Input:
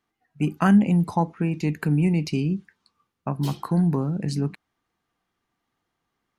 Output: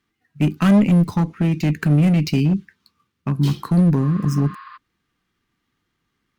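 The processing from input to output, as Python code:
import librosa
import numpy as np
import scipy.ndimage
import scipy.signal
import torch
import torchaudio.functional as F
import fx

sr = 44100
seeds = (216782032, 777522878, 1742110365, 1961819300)

y = scipy.signal.medfilt(x, 5)
y = fx.peak_eq(y, sr, hz=710.0, db=-14.0, octaves=1.2)
y = fx.clip_asym(y, sr, top_db=-22.0, bottom_db=-16.0)
y = fx.spec_repair(y, sr, seeds[0], start_s=4.05, length_s=0.69, low_hz=980.0, high_hz=5000.0, source='before')
y = y * librosa.db_to_amplitude(8.5)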